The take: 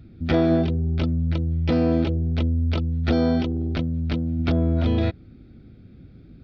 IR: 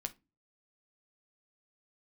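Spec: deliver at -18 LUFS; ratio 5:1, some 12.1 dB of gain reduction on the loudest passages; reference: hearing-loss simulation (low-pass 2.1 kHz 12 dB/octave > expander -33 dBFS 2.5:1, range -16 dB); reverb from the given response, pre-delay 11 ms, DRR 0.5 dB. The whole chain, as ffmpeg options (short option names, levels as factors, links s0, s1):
-filter_complex "[0:a]acompressor=threshold=0.0316:ratio=5,asplit=2[s0][s1];[1:a]atrim=start_sample=2205,adelay=11[s2];[s1][s2]afir=irnorm=-1:irlink=0,volume=1.12[s3];[s0][s3]amix=inputs=2:normalize=0,lowpass=2100,agate=range=0.158:threshold=0.0224:ratio=2.5,volume=3.55"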